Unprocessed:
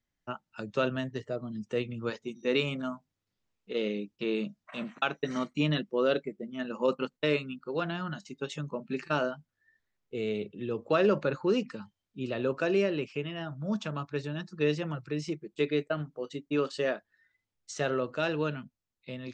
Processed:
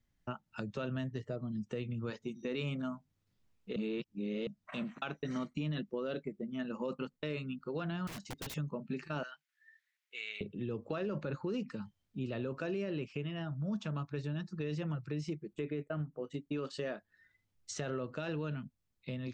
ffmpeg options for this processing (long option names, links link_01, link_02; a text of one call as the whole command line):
ffmpeg -i in.wav -filter_complex "[0:a]asettb=1/sr,asplit=3[link_01][link_02][link_03];[link_01]atrim=end=8.074[link_04];[link_02]atrim=start=8.07:end=8.56,asetpts=PTS-STARTPTS,afade=type=in:duration=0.004:curve=qsin,afade=type=out:start_time=0.486:duration=0.004:curve=qsin,aeval=exprs='(mod(66.8*val(0)+1,2)-1)/66.8':channel_layout=same[link_05];[link_03]atrim=start=8.556[link_06];[link_04][link_05]acrossfade=duration=0.004:curve1=hsin:curve2=qsin[link_07];[link_07][link_06]acrossfade=duration=0.004:curve1=qsin:curve2=hsin,asettb=1/sr,asplit=3[link_08][link_09][link_10];[link_08]atrim=end=9.234[link_11];[link_09]atrim=start=9.23:end=10.41,asetpts=PTS-STARTPTS,afade=type=in:duration=0.004:curve=qsin,afade=type=out:start_time=1.176:duration=0.004:curve=qsin,highpass=frequency=2000:width_type=q:width=1.9[link_12];[link_10]atrim=start=10.406[link_13];[link_11][link_12]acrossfade=duration=0.004:curve1=hsin:curve2=qsin[link_14];[link_14][link_13]acrossfade=duration=0.004:curve1=qsin:curve2=hsin,asettb=1/sr,asplit=3[link_15][link_16][link_17];[link_15]atrim=end=15.534[link_18];[link_16]atrim=start=15.53:end=16.34,asetpts=PTS-STARTPTS,afade=type=in:duration=0.004:curve=qsin,afade=type=out:start_time=0.806:duration=0.004:curve=qsin,equalizer=frequency=4600:width=1.5:gain=-15[link_19];[link_17]atrim=start=16.336[link_20];[link_18][link_19]acrossfade=duration=0.004:curve1=hsin:curve2=qsin[link_21];[link_21][link_20]acrossfade=duration=0.004:curve1=qsin:curve2=hsin,asplit=3[link_22][link_23][link_24];[link_22]atrim=end=3.762[link_25];[link_23]atrim=start=3.758:end=4.472,asetpts=PTS-STARTPTS,areverse[link_26];[link_24]atrim=start=4.468[link_27];[link_25][link_26]acrossfade=duration=0.004:curve1=hsin:curve2=hsin[link_28];[link_28][link_27]acrossfade=duration=0.004:curve1=hsin:curve2=hsin,bass=frequency=250:gain=8,treble=frequency=4000:gain=-1,alimiter=limit=-21dB:level=0:latency=1:release=18,acompressor=threshold=-43dB:ratio=2,volume=1.5dB" out.wav